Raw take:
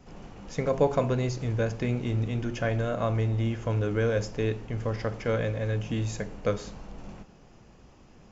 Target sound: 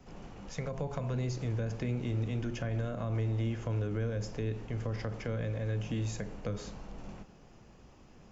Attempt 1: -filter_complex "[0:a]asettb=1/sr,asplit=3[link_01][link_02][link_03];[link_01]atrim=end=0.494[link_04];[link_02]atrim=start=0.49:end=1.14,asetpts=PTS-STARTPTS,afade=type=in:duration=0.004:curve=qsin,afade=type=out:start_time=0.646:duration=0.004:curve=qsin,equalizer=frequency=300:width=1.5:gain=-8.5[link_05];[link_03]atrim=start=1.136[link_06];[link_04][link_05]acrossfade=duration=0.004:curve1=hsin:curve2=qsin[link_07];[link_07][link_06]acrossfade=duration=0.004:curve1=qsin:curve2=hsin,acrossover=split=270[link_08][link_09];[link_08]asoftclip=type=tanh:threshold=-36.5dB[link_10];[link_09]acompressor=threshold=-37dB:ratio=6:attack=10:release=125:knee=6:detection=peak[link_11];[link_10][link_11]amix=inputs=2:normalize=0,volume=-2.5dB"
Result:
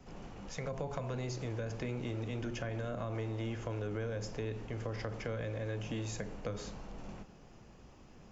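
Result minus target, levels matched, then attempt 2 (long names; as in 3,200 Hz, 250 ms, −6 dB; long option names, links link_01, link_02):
soft clipping: distortion +11 dB
-filter_complex "[0:a]asettb=1/sr,asplit=3[link_01][link_02][link_03];[link_01]atrim=end=0.494[link_04];[link_02]atrim=start=0.49:end=1.14,asetpts=PTS-STARTPTS,afade=type=in:duration=0.004:curve=qsin,afade=type=out:start_time=0.646:duration=0.004:curve=qsin,equalizer=frequency=300:width=1.5:gain=-8.5[link_05];[link_03]atrim=start=1.136[link_06];[link_04][link_05]acrossfade=duration=0.004:curve1=hsin:curve2=qsin[link_07];[link_07][link_06]acrossfade=duration=0.004:curve1=qsin:curve2=hsin,acrossover=split=270[link_08][link_09];[link_08]asoftclip=type=tanh:threshold=-25dB[link_10];[link_09]acompressor=threshold=-37dB:ratio=6:attack=10:release=125:knee=6:detection=peak[link_11];[link_10][link_11]amix=inputs=2:normalize=0,volume=-2.5dB"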